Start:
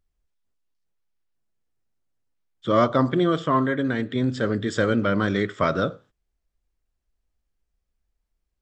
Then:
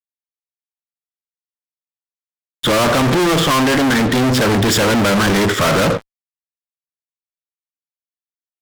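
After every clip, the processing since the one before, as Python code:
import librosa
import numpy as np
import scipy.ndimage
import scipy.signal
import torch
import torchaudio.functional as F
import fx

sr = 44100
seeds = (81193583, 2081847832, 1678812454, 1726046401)

y = fx.fuzz(x, sr, gain_db=44.0, gate_db=-52.0)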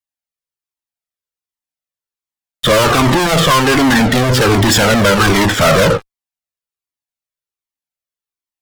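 y = fx.comb_cascade(x, sr, direction='falling', hz=1.3)
y = y * librosa.db_to_amplitude(8.0)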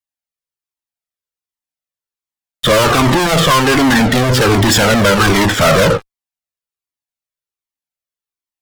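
y = x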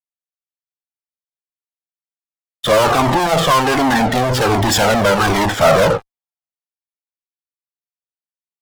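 y = fx.peak_eq(x, sr, hz=770.0, db=9.5, octaves=0.84)
y = fx.band_widen(y, sr, depth_pct=40)
y = y * librosa.db_to_amplitude(-5.5)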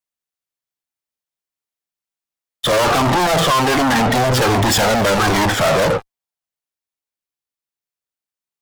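y = fx.rider(x, sr, range_db=10, speed_s=0.5)
y = 10.0 ** (-19.0 / 20.0) * np.tanh(y / 10.0 ** (-19.0 / 20.0))
y = y * librosa.db_to_amplitude(6.5)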